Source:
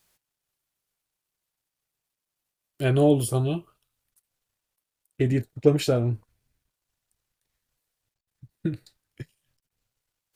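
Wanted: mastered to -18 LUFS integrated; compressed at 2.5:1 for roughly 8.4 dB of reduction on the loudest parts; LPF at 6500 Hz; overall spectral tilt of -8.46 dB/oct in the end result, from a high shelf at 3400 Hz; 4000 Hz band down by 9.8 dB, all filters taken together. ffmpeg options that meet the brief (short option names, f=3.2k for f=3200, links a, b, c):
-af "lowpass=6.5k,highshelf=f=3.4k:g=-8.5,equalizer=f=4k:t=o:g=-7,acompressor=threshold=-25dB:ratio=2.5,volume=12dB"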